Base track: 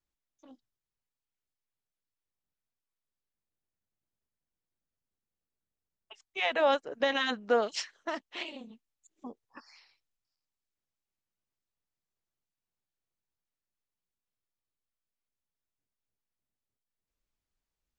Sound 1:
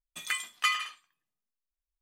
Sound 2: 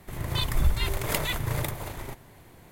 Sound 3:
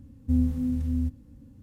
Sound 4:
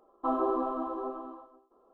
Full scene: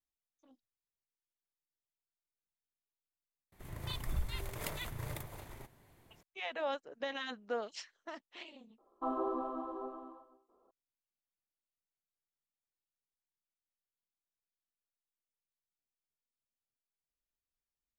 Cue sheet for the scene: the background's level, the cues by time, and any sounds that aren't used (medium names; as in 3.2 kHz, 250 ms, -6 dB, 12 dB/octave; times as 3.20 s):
base track -11 dB
3.52 s: add 2 -13 dB
8.78 s: replace with 4 -7 dB
not used: 1, 3